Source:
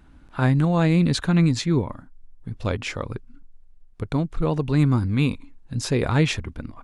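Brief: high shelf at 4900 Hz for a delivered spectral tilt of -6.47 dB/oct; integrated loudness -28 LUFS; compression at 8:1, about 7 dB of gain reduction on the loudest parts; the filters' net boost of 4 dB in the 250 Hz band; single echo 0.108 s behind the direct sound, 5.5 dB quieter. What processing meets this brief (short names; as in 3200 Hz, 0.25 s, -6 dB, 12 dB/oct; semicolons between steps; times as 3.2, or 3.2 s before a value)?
bell 250 Hz +6 dB; high shelf 4900 Hz +3 dB; compressor 8:1, threshold -19 dBFS; echo 0.108 s -5.5 dB; gain -3.5 dB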